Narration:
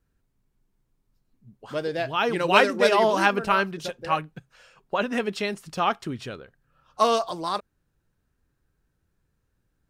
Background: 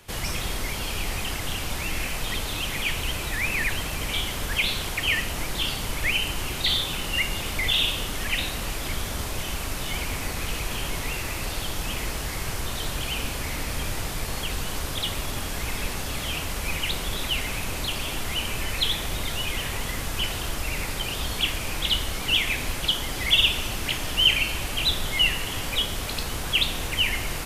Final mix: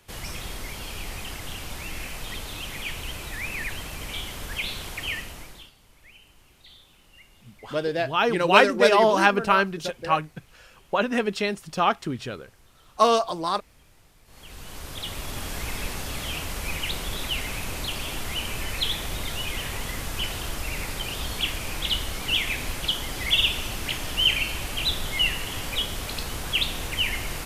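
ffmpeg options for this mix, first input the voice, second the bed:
ffmpeg -i stem1.wav -i stem2.wav -filter_complex "[0:a]adelay=6000,volume=2dB[link_01];[1:a]volume=19.5dB,afade=type=out:start_time=5.05:duration=0.66:silence=0.0841395,afade=type=in:start_time=14.25:duration=1.26:silence=0.0530884[link_02];[link_01][link_02]amix=inputs=2:normalize=0" out.wav

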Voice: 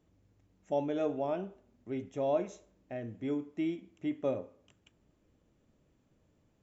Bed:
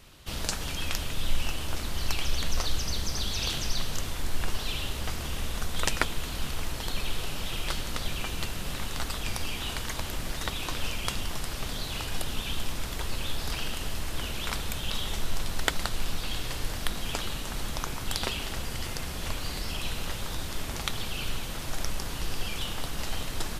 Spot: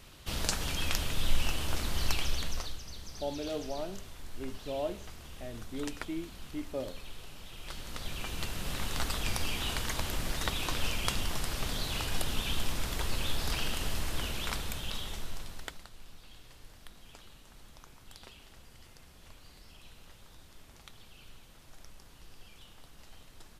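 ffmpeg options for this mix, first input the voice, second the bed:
ffmpeg -i stem1.wav -i stem2.wav -filter_complex "[0:a]adelay=2500,volume=-4.5dB[link_01];[1:a]volume=13.5dB,afade=type=out:start_time=2.05:duration=0.74:silence=0.199526,afade=type=in:start_time=7.56:duration=1.43:silence=0.199526,afade=type=out:start_time=13.98:duration=1.87:silence=0.0944061[link_02];[link_01][link_02]amix=inputs=2:normalize=0" out.wav

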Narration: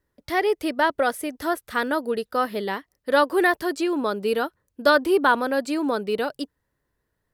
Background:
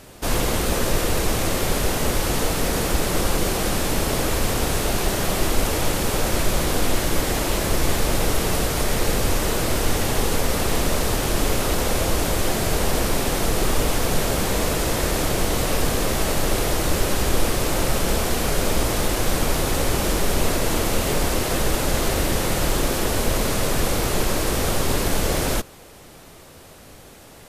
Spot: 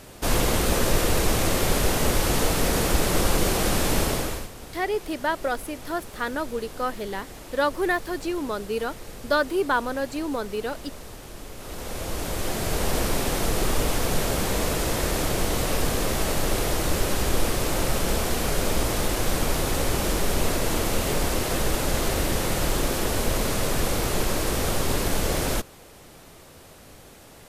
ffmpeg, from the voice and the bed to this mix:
ffmpeg -i stem1.wav -i stem2.wav -filter_complex "[0:a]adelay=4450,volume=-4.5dB[link_01];[1:a]volume=15.5dB,afade=type=out:start_time=4:duration=0.49:silence=0.11885,afade=type=in:start_time=11.55:duration=1.42:silence=0.158489[link_02];[link_01][link_02]amix=inputs=2:normalize=0" out.wav

